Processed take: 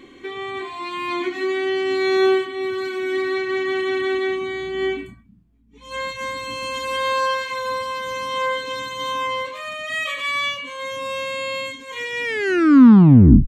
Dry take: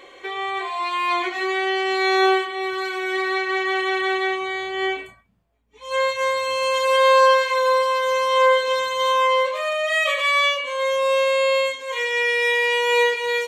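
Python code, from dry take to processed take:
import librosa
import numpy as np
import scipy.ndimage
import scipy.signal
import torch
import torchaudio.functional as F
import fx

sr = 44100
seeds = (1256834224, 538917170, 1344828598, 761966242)

y = fx.tape_stop_end(x, sr, length_s=1.23)
y = fx.low_shelf_res(y, sr, hz=380.0, db=14.0, q=3.0)
y = y * 10.0 ** (-3.5 / 20.0)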